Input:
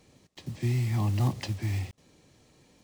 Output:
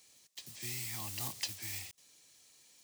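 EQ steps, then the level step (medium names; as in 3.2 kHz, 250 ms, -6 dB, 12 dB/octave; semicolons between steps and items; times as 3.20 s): pre-emphasis filter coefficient 0.97; +7.0 dB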